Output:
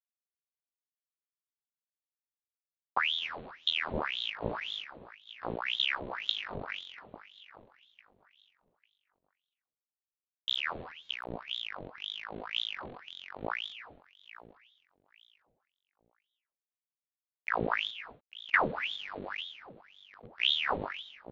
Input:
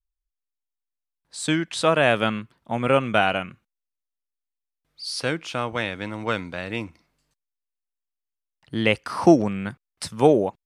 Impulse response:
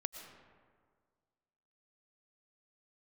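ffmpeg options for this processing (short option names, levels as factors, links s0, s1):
-filter_complex "[0:a]agate=range=0.0224:threshold=0.00891:ratio=3:detection=peak,lowpass=f=370:t=q:w=4.1,lowshelf=f=220:t=q:w=1.5:g=6,acrossover=split=240[s0][s1];[s0]asoftclip=type=tanh:threshold=0.075[s2];[s1]acompressor=threshold=0.0631:ratio=10[s3];[s2][s3]amix=inputs=2:normalize=0,aeval=exprs='0.211*(cos(1*acos(clip(val(0)/0.211,-1,1)))-cos(1*PI/2))+0.0668*(cos(3*acos(clip(val(0)/0.211,-1,1)))-cos(3*PI/2))+0.00133*(cos(8*acos(clip(val(0)/0.211,-1,1)))-cos(8*PI/2))':c=same,bandreject=f=163.8:t=h:w=4,bandreject=f=327.6:t=h:w=4,bandreject=f=491.4:t=h:w=4,bandreject=f=655.2:t=h:w=4,aresample=16000,aeval=exprs='val(0)*gte(abs(val(0)),0.0106)':c=same,aresample=44100,aecho=1:1:424|848|1272:0.15|0.0404|0.0109[s4];[1:a]atrim=start_sample=2205,atrim=end_sample=6615[s5];[s4][s5]afir=irnorm=-1:irlink=0,asetrate=22050,aresample=44100,aeval=exprs='val(0)*sin(2*PI*1900*n/s+1900*0.85/1.9*sin(2*PI*1.9*n/s))':c=same"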